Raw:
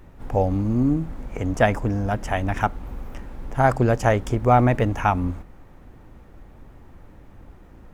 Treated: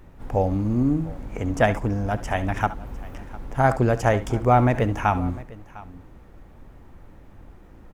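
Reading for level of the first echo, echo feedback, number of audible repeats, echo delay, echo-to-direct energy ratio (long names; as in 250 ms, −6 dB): −16.0 dB, repeats not evenly spaced, 2, 68 ms, −13.5 dB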